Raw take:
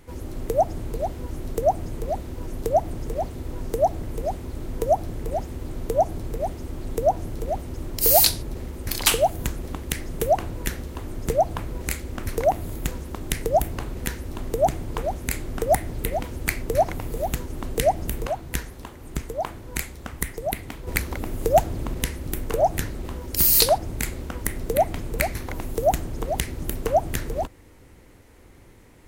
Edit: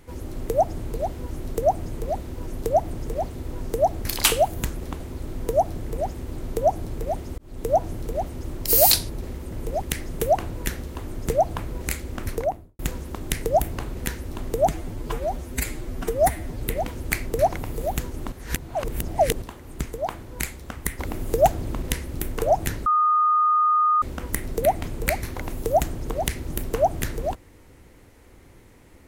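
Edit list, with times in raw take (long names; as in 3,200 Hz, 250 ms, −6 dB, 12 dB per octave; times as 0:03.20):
0:04.02–0:04.33: swap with 0:08.84–0:09.82
0:06.71–0:07.04: fade in
0:12.23–0:12.79: fade out and dull
0:14.69–0:15.97: time-stretch 1.5×
0:17.68–0:18.78: reverse
0:20.35–0:21.11: remove
0:22.98–0:24.14: beep over 1,230 Hz −16 dBFS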